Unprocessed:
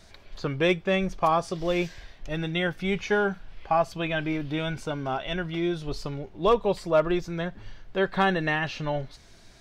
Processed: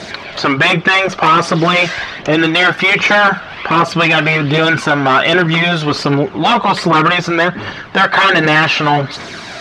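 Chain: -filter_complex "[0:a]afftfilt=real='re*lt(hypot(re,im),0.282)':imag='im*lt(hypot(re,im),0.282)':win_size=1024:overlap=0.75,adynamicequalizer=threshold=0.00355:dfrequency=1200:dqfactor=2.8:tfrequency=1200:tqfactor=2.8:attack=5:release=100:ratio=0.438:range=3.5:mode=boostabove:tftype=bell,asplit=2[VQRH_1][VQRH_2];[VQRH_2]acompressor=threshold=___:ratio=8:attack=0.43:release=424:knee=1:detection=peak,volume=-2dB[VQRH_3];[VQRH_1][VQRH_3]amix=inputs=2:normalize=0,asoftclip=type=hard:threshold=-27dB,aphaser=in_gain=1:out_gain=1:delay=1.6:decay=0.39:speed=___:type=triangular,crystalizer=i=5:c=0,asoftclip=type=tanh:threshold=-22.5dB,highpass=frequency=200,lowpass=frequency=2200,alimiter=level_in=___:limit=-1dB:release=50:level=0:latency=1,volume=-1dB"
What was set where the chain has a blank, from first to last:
-39dB, 1.3, 23dB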